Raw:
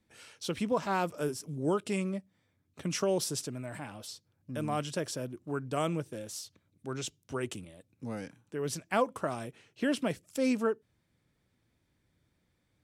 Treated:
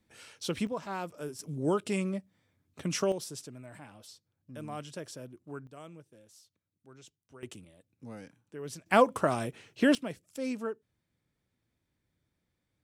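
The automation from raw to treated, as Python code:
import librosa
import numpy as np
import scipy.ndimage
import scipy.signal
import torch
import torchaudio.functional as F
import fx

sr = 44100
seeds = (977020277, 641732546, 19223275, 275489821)

y = fx.gain(x, sr, db=fx.steps((0.0, 1.0), (0.67, -6.5), (1.39, 1.0), (3.12, -7.5), (5.67, -17.0), (7.43, -6.5), (8.86, 6.0), (9.95, -6.0)))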